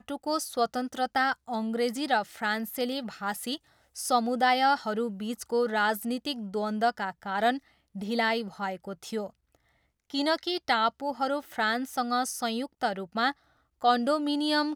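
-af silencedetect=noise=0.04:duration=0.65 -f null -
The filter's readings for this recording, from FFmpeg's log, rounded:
silence_start: 9.21
silence_end: 10.14 | silence_duration: 0.93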